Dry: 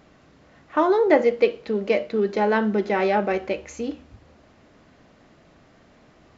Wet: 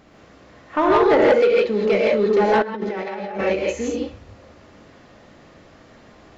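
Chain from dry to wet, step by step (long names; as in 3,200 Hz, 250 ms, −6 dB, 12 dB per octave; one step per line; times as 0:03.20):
reverb whose tail is shaped and stops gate 190 ms rising, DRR −3.5 dB
0:02.62–0:03.41: compressor whose output falls as the input rises −30 dBFS, ratio −1
soft clipping −11.5 dBFS, distortion −12 dB
level +2 dB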